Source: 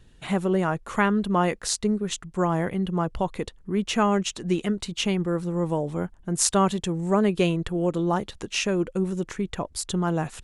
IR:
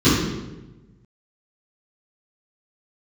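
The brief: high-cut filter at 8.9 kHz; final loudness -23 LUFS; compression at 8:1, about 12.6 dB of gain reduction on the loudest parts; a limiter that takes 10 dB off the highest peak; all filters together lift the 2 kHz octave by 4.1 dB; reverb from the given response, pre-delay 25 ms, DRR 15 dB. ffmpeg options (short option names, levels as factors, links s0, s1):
-filter_complex "[0:a]lowpass=8900,equalizer=f=2000:t=o:g=5.5,acompressor=threshold=0.0355:ratio=8,alimiter=level_in=1.06:limit=0.0631:level=0:latency=1,volume=0.944,asplit=2[s0][s1];[1:a]atrim=start_sample=2205,adelay=25[s2];[s1][s2]afir=irnorm=-1:irlink=0,volume=0.0141[s3];[s0][s3]amix=inputs=2:normalize=0,volume=3.35"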